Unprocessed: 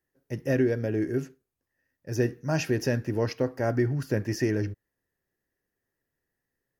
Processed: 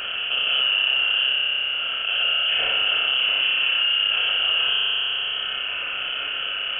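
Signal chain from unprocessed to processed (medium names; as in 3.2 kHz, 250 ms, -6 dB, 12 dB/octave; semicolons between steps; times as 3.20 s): spectral levelling over time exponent 0.4; spring tank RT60 1.9 s, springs 30 ms, chirp 60 ms, DRR -6.5 dB; frequency inversion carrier 3.2 kHz; level flattener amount 70%; trim -8.5 dB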